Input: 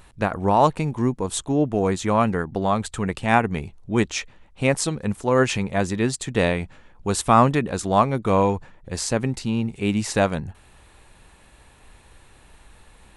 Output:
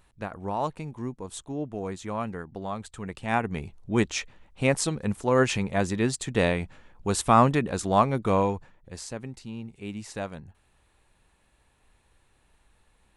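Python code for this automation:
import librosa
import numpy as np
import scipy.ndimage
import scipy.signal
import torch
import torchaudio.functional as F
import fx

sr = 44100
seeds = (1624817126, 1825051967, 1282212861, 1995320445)

y = fx.gain(x, sr, db=fx.line((2.97, -12.0), (3.77, -3.0), (8.26, -3.0), (9.17, -14.0)))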